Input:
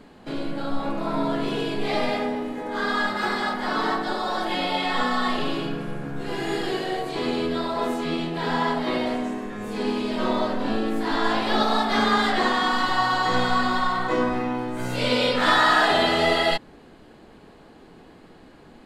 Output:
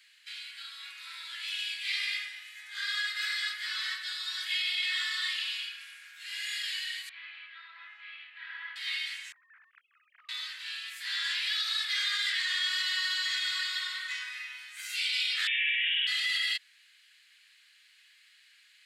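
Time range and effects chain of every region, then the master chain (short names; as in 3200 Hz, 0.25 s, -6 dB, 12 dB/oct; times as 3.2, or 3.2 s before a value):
7.09–8.76 Bessel low-pass 1500 Hz, order 4 + bell 330 Hz +3.5 dB 2 oct
9.32–10.29 sine-wave speech + LPF 1300 Hz 24 dB/oct + compressor, threshold -34 dBFS
15.47–16.07 inverted band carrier 3600 Hz + fast leveller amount 100%
whole clip: steep high-pass 1900 Hz 36 dB/oct; limiter -22.5 dBFS; gain +1.5 dB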